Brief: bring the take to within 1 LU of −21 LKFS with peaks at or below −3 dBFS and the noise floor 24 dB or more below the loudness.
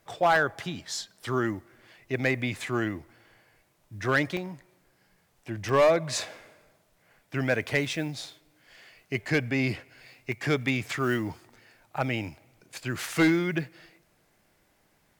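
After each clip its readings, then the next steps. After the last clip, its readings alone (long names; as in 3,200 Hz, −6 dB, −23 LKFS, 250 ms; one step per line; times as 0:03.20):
share of clipped samples 0.4%; peaks flattened at −15.5 dBFS; number of dropouts 5; longest dropout 1.1 ms; integrated loudness −28.5 LKFS; sample peak −15.5 dBFS; target loudness −21.0 LKFS
→ clipped peaks rebuilt −15.5 dBFS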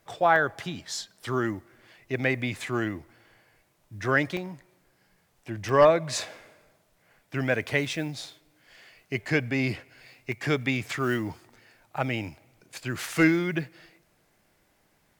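share of clipped samples 0.0%; number of dropouts 5; longest dropout 1.1 ms
→ repair the gap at 0:00.36/0:04.37/0:05.69/0:08.24/0:10.32, 1.1 ms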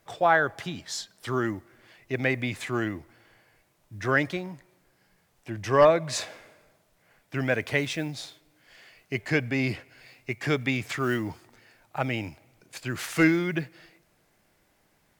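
number of dropouts 0; integrated loudness −27.5 LKFS; sample peak −6.5 dBFS; target loudness −21.0 LKFS
→ level +6.5 dB
brickwall limiter −3 dBFS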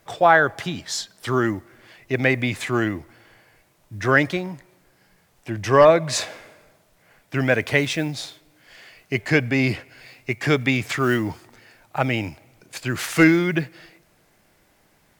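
integrated loudness −21.0 LKFS; sample peak −3.0 dBFS; background noise floor −61 dBFS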